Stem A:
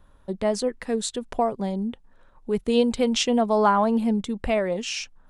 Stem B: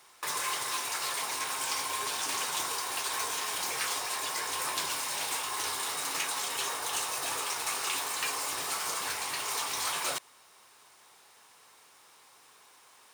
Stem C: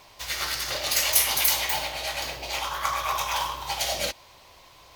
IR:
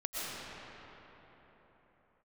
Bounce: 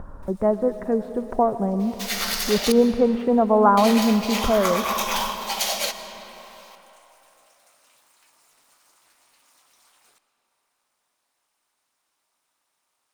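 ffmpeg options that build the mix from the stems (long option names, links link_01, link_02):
-filter_complex "[0:a]lowpass=frequency=1400:width=0.5412,lowpass=frequency=1400:width=1.3066,acompressor=mode=upward:threshold=-29dB:ratio=2.5,volume=2.5dB,asplit=2[link_01][link_02];[link_02]volume=-15.5dB[link_03];[1:a]aeval=exprs='val(0)*sin(2*PI*140*n/s)':channel_layout=same,acompressor=threshold=-51dB:ratio=2,volume=-17dB,asplit=2[link_04][link_05];[link_05]volume=-13.5dB[link_06];[2:a]highpass=450,adelay=1800,volume=0.5dB,asplit=3[link_07][link_08][link_09];[link_07]atrim=end=2.72,asetpts=PTS-STARTPTS,afade=type=out:start_time=2.716:duration=0.004:curve=hsin[link_10];[link_08]atrim=start=2.72:end=3.77,asetpts=PTS-STARTPTS,volume=0[link_11];[link_09]atrim=start=3.77,asetpts=PTS-STARTPTS,afade=type=in:duration=0.004:curve=hsin[link_12];[link_10][link_11][link_12]concat=n=3:v=0:a=1,asplit=2[link_13][link_14];[link_14]volume=-13.5dB[link_15];[3:a]atrim=start_sample=2205[link_16];[link_03][link_06][link_15]amix=inputs=3:normalize=0[link_17];[link_17][link_16]afir=irnorm=-1:irlink=0[link_18];[link_01][link_04][link_13][link_18]amix=inputs=4:normalize=0,highshelf=frequency=6600:gain=4"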